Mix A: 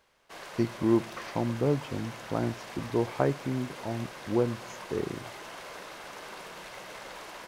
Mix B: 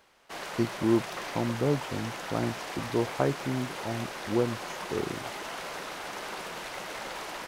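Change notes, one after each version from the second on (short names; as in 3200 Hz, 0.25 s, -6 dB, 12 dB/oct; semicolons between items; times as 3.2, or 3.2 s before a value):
background +8.0 dB; reverb: off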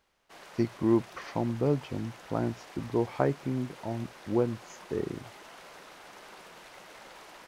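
background -11.5 dB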